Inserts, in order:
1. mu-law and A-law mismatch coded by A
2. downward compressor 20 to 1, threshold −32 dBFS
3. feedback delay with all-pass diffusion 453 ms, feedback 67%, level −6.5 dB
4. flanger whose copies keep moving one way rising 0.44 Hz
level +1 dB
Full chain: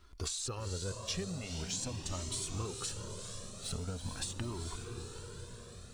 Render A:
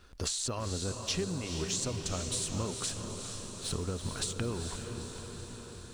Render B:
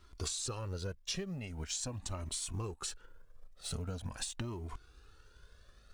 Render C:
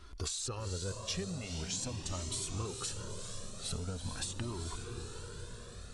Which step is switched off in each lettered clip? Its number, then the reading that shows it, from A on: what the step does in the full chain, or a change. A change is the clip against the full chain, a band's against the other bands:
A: 4, 500 Hz band +1.5 dB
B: 3, change in momentary loudness spread −2 LU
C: 1, distortion level −26 dB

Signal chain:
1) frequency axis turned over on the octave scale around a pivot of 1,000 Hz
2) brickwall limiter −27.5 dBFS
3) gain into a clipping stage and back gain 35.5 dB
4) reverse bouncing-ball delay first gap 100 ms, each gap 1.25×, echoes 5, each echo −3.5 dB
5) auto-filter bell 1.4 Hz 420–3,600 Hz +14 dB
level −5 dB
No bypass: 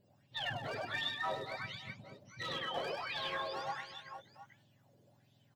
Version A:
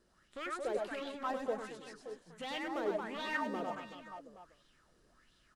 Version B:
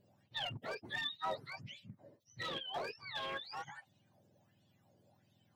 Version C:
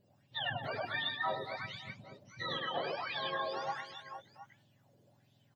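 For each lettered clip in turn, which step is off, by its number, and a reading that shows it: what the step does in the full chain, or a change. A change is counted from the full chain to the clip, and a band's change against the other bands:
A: 1, 250 Hz band +11.0 dB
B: 4, change in integrated loudness −2.5 LU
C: 3, distortion level −11 dB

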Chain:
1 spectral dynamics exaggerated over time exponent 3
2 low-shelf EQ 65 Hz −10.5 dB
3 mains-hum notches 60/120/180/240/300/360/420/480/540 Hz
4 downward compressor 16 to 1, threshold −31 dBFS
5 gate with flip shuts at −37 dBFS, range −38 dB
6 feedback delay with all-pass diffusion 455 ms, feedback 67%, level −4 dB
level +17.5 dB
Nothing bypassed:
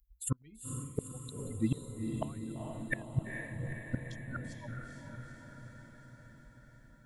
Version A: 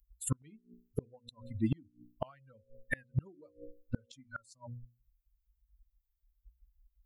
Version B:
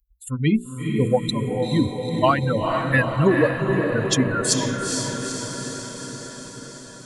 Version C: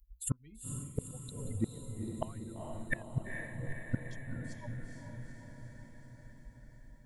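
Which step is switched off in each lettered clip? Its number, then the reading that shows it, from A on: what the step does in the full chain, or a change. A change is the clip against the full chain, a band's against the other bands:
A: 6, echo-to-direct ratio −1.5 dB to none audible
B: 5, change in momentary loudness spread −5 LU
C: 2, 250 Hz band −1.5 dB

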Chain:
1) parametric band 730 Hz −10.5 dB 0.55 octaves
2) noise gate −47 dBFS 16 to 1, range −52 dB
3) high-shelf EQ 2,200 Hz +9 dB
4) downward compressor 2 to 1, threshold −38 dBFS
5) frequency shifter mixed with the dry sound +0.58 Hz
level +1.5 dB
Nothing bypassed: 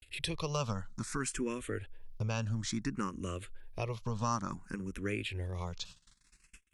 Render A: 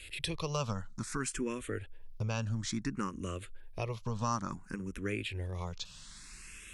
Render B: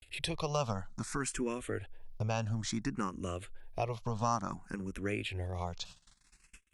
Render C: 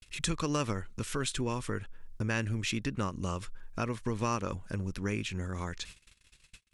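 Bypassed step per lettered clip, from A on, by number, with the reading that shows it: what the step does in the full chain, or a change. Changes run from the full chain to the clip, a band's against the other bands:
2, change in momentary loudness spread +5 LU
1, 1 kHz band +3.0 dB
5, 2 kHz band +1.5 dB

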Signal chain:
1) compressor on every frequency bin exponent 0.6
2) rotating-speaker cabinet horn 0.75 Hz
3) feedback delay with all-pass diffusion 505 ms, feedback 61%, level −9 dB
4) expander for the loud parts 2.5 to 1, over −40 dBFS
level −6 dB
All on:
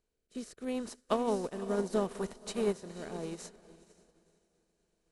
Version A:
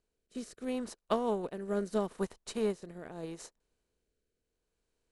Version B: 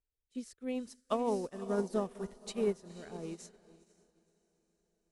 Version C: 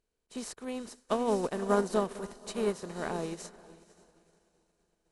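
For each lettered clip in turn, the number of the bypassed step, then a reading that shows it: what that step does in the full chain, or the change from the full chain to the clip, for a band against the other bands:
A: 3, 8 kHz band −1.5 dB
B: 1, 2 kHz band −2.0 dB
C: 2, 2 kHz band +3.0 dB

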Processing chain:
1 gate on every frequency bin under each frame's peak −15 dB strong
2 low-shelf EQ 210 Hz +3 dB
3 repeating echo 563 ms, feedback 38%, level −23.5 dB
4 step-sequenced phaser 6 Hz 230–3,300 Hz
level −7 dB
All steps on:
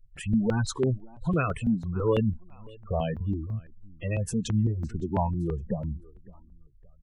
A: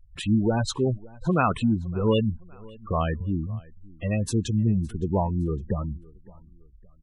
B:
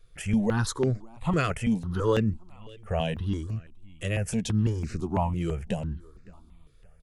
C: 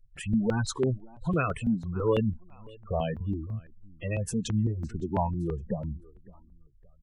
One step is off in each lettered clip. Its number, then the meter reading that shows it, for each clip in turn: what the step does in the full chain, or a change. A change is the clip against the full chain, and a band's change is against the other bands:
4, 4 kHz band +4.0 dB
1, 4 kHz band +3.5 dB
2, 125 Hz band −2.0 dB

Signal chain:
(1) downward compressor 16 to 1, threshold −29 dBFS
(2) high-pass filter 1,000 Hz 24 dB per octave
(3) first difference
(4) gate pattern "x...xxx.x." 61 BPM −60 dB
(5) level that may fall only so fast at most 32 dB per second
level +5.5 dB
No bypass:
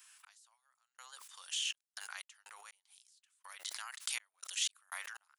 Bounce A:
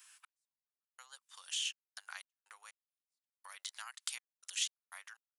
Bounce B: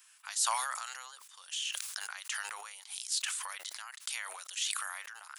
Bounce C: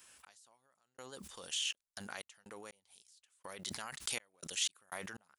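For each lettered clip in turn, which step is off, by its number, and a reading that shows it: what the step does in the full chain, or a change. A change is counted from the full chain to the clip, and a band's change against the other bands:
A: 5, change in momentary loudness spread +2 LU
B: 4, 1 kHz band +7.5 dB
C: 2, 500 Hz band +18.0 dB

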